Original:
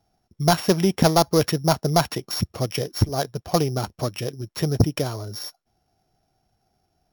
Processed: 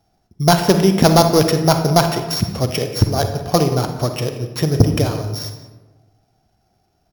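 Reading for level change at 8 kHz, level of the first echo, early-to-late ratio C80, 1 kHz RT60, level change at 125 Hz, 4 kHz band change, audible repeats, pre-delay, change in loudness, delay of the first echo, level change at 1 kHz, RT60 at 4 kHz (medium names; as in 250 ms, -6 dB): +5.0 dB, -17.5 dB, 9.5 dB, 1.1 s, +6.5 dB, +5.5 dB, 1, 38 ms, +6.0 dB, 178 ms, +6.0 dB, 0.65 s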